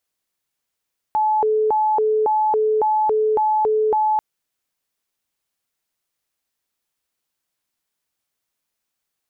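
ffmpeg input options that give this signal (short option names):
-f lavfi -i "aevalsrc='0.178*sin(2*PI*(646*t+214/1.8*(0.5-abs(mod(1.8*t,1)-0.5))))':d=3.04:s=44100"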